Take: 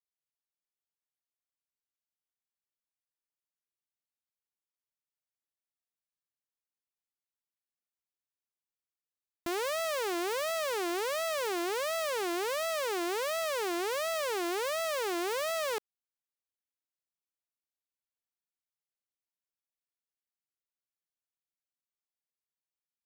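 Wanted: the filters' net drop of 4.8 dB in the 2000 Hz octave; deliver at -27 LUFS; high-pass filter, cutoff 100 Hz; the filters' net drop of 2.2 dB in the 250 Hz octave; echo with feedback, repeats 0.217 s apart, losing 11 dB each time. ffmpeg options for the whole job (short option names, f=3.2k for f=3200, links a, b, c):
-af "highpass=100,equalizer=f=250:t=o:g=-4,equalizer=f=2k:t=o:g=-6,aecho=1:1:217|434|651:0.282|0.0789|0.0221,volume=6.5dB"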